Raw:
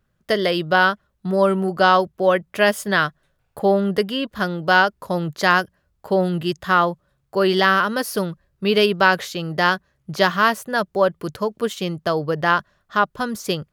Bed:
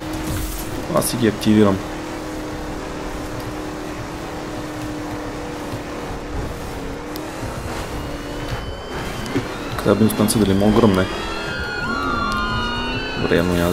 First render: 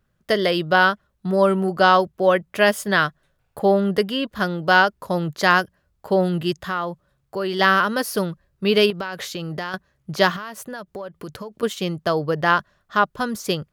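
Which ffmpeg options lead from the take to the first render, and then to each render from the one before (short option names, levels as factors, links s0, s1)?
-filter_complex "[0:a]asplit=3[s0][s1][s2];[s0]afade=t=out:st=6.53:d=0.02[s3];[s1]acompressor=threshold=0.0447:ratio=2:attack=3.2:release=140:knee=1:detection=peak,afade=t=in:st=6.53:d=0.02,afade=t=out:st=7.59:d=0.02[s4];[s2]afade=t=in:st=7.59:d=0.02[s5];[s3][s4][s5]amix=inputs=3:normalize=0,asettb=1/sr,asplit=3[s6][s7][s8];[s6]atrim=end=8.904[s9];[s7]atrim=start=8.9:end=9.74,asetpts=PTS-STARTPTS,afade=t=in:d=0.004:c=qsin,afade=t=out:st=0.836:d=0.004:c=qsin,acompressor=threshold=0.0631:ratio=10:attack=3.2:release=140:knee=1:detection=peak[s10];[s8]atrim=start=9.736[s11];[s9][s10]acrossfade=d=0.004:c1=hsin:c2=qsin[s12];[s12][s11]acrossfade=d=0.004:c1=qsin:c2=hsin,asettb=1/sr,asplit=3[s13][s14][s15];[s13]atrim=end=10.364[s16];[s14]atrim=start=10.36:end=11.63,asetpts=PTS-STARTPTS,afade=t=in:d=0.004:c=qsin,afade=t=out:st=1.266:d=0.004:c=qsin,acompressor=threshold=0.0355:ratio=10:attack=3.2:release=140:knee=1:detection=peak[s17];[s15]atrim=start=11.626[s18];[s16][s17]acrossfade=d=0.004:c1=hsin:c2=qsin[s19];[s19][s18]acrossfade=d=0.004:c1=qsin:c2=hsin"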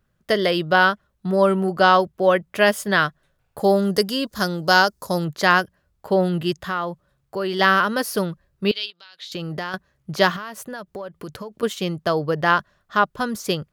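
-filter_complex "[0:a]asettb=1/sr,asplit=3[s0][s1][s2];[s0]atrim=end=3.594[s3];[s1]atrim=start=3.59:end=5.25,asetpts=PTS-STARTPTS,afade=t=in:d=0.004:c=qsin,afade=t=out:st=1.656:d=0.004:c=qsin,highshelf=f=4000:t=q:w=1.5:g=10[s4];[s2]atrim=start=5.246[s5];[s3][s4]acrossfade=d=0.004:c1=hsin:c2=qsin[s6];[s6][s5]acrossfade=d=0.004:c1=qsin:c2=hsin,asettb=1/sr,asplit=3[s7][s8][s9];[s7]atrim=end=8.714[s10];[s8]atrim=start=8.71:end=9.32,asetpts=PTS-STARTPTS,afade=t=in:d=0.004:c=qsin,afade=t=out:st=0.606:d=0.004:c=qsin,bandpass=f=3900:t=q:w=3.6[s11];[s9]atrim=start=9.316[s12];[s10][s11]acrossfade=d=0.004:c1=hsin:c2=qsin[s13];[s13][s12]acrossfade=d=0.004:c1=qsin:c2=hsin"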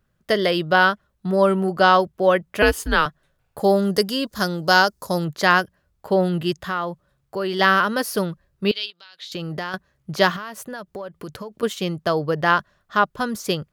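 -filter_complex "[0:a]asettb=1/sr,asplit=3[s0][s1][s2];[s0]atrim=end=2.624[s3];[s1]atrim=start=2.62:end=3.06,asetpts=PTS-STARTPTS,afade=t=in:d=0.004:c=qsin,afade=t=out:st=0.436:d=0.004:c=qsin,afreqshift=-150[s4];[s2]atrim=start=3.056[s5];[s3][s4]acrossfade=d=0.004:c1=hsin:c2=qsin[s6];[s6][s5]acrossfade=d=0.004:c1=qsin:c2=hsin"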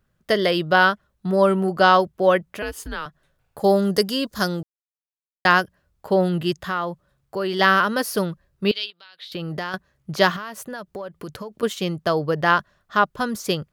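-filter_complex "[0:a]asettb=1/sr,asplit=3[s0][s1][s2];[s0]atrim=end=2.444[s3];[s1]atrim=start=2.44:end=3.64,asetpts=PTS-STARTPTS,afade=t=in:d=0.004:c=qsin,afade=t=out:st=1.196:d=0.004:c=qsin,acompressor=threshold=0.0178:ratio=2:attack=3.2:release=140:knee=1:detection=peak[s4];[s2]atrim=start=3.636[s5];[s3][s4]acrossfade=d=0.004:c1=hsin:c2=qsin[s6];[s6][s5]acrossfade=d=0.004:c1=qsin:c2=hsin,asettb=1/sr,asplit=3[s7][s8][s9];[s7]atrim=end=8.844[s10];[s8]atrim=start=8.84:end=9.48,asetpts=PTS-STARTPTS,afade=t=in:d=0.004:c=qsin,afade=t=out:st=0.636:d=0.004:c=qsin,equalizer=f=6700:t=o:w=0.58:g=-13.5[s11];[s9]atrim=start=9.476[s12];[s10][s11]acrossfade=d=0.004:c1=hsin:c2=qsin[s13];[s13][s12]acrossfade=d=0.004:c1=qsin:c2=hsin,asplit=3[s14][s15][s16];[s14]atrim=end=4.63,asetpts=PTS-STARTPTS,afade=t=out:st=4.626:d=0.004:c=hsin[s17];[s15]atrim=start=4.63:end=5.45,asetpts=PTS-STARTPTS,volume=0[s18];[s16]atrim=start=5.45,asetpts=PTS-STARTPTS,afade=t=in:d=0.004:c=hsin[s19];[s17][s18][s19]concat=n=3:v=0:a=1"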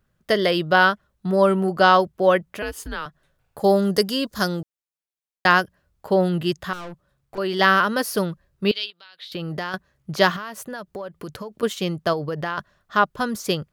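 -filter_complex "[0:a]asettb=1/sr,asplit=3[s0][s1][s2];[s0]atrim=end=6.734[s3];[s1]atrim=start=6.73:end=7.38,asetpts=PTS-STARTPTS,afade=t=in:d=0.004:c=qsin,afade=t=out:st=0.646:d=0.004:c=qsin,aeval=exprs='(tanh(44.7*val(0)+0.45)-tanh(0.45))/44.7':c=same[s4];[s2]atrim=start=7.376[s5];[s3][s4]acrossfade=d=0.004:c1=hsin:c2=qsin[s6];[s6][s5]acrossfade=d=0.004:c1=qsin:c2=hsin,asettb=1/sr,asplit=3[s7][s8][s9];[s7]atrim=end=12.134[s10];[s8]atrim=start=12.13:end=12.58,asetpts=PTS-STARTPTS,afade=t=in:d=0.004:c=qsin,afade=t=out:st=0.446:d=0.004:c=qsin,acompressor=threshold=0.0708:ratio=5:attack=3.2:release=140:knee=1:detection=peak[s11];[s9]atrim=start=12.576[s12];[s10][s11]acrossfade=d=0.004:c1=hsin:c2=qsin[s13];[s13][s12]acrossfade=d=0.004:c1=qsin:c2=hsin"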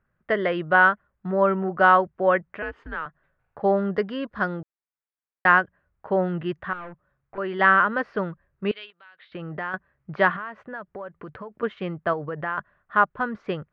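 -af "lowpass=f=1900:w=0.5412,lowpass=f=1900:w=1.3066,tiltshelf=f=1200:g=-5.5"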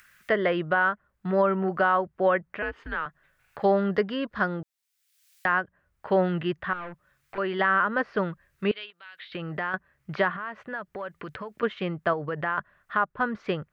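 -filter_complex "[0:a]acrossover=split=2000[s0][s1];[s1]acompressor=mode=upward:threshold=0.02:ratio=2.5[s2];[s0][s2]amix=inputs=2:normalize=0,alimiter=limit=0.237:level=0:latency=1:release=214"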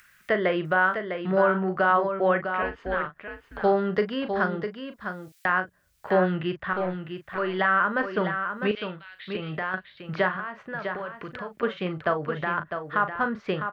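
-filter_complex "[0:a]asplit=2[s0][s1];[s1]adelay=38,volume=0.316[s2];[s0][s2]amix=inputs=2:normalize=0,asplit=2[s3][s4];[s4]aecho=0:1:653:0.422[s5];[s3][s5]amix=inputs=2:normalize=0"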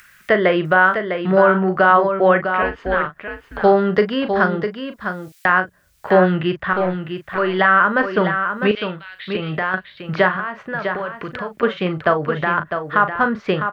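-af "volume=2.66,alimiter=limit=0.794:level=0:latency=1"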